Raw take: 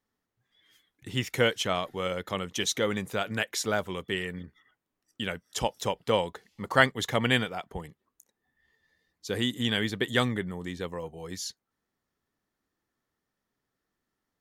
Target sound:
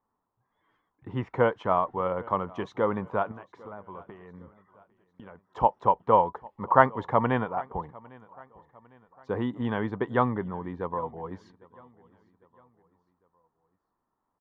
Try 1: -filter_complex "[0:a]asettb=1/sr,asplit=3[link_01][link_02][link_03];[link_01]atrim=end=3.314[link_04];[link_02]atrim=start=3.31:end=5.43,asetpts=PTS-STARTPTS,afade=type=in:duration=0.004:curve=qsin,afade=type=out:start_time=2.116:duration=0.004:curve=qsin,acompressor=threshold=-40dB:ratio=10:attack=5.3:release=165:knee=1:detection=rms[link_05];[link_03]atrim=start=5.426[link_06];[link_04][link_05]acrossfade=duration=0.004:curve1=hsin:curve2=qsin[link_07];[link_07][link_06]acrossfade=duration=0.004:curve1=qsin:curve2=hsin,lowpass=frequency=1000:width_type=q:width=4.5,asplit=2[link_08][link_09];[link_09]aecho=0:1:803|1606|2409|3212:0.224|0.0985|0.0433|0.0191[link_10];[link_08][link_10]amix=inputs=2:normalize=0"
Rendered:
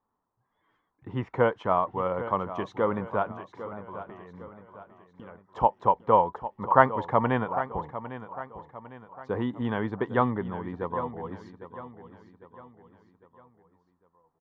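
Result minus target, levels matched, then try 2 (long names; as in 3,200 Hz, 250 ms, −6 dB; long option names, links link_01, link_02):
echo-to-direct +10.5 dB
-filter_complex "[0:a]asettb=1/sr,asplit=3[link_01][link_02][link_03];[link_01]atrim=end=3.314[link_04];[link_02]atrim=start=3.31:end=5.43,asetpts=PTS-STARTPTS,afade=type=in:duration=0.004:curve=qsin,afade=type=out:start_time=2.116:duration=0.004:curve=qsin,acompressor=threshold=-40dB:ratio=10:attack=5.3:release=165:knee=1:detection=rms[link_05];[link_03]atrim=start=5.426[link_06];[link_04][link_05]acrossfade=duration=0.004:curve1=hsin:curve2=qsin[link_07];[link_07][link_06]acrossfade=duration=0.004:curve1=qsin:curve2=hsin,lowpass=frequency=1000:width_type=q:width=4.5,asplit=2[link_08][link_09];[link_09]aecho=0:1:803|1606|2409:0.0668|0.0294|0.0129[link_10];[link_08][link_10]amix=inputs=2:normalize=0"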